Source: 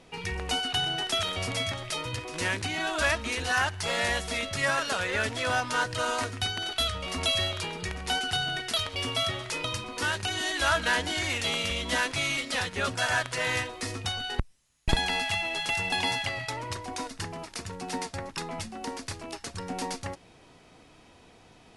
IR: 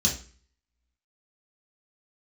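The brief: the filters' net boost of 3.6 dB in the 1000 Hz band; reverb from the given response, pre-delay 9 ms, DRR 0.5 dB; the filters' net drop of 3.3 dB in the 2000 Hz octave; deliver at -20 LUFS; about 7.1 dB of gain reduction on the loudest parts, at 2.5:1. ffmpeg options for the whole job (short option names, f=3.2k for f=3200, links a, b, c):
-filter_complex "[0:a]equalizer=f=1k:t=o:g=6.5,equalizer=f=2k:t=o:g=-7,acompressor=threshold=-31dB:ratio=2.5,asplit=2[a][b];[1:a]atrim=start_sample=2205,adelay=9[c];[b][c]afir=irnorm=-1:irlink=0,volume=-9dB[d];[a][d]amix=inputs=2:normalize=0,volume=9dB"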